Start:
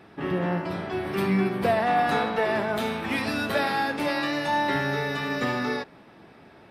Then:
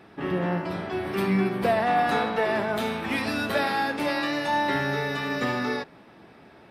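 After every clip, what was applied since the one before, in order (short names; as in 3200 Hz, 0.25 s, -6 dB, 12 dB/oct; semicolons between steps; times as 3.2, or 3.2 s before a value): notches 50/100/150 Hz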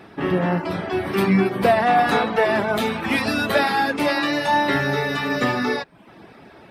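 reverb removal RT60 0.54 s; gain +7 dB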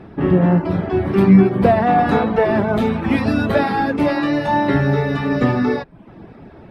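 tilt -3.5 dB/oct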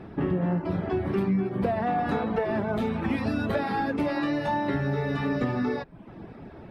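compressor 4:1, threshold -21 dBFS, peak gain reduction 13 dB; gain -3.5 dB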